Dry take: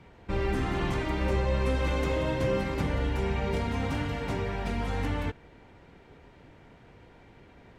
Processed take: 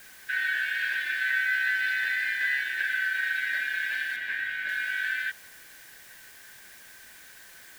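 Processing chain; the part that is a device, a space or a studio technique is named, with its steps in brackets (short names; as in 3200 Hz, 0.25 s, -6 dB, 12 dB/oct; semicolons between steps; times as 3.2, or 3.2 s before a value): split-band scrambled radio (four-band scrambler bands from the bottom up 4123; BPF 330–3200 Hz; white noise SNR 21 dB); 4.16–4.69 tone controls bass +5 dB, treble -8 dB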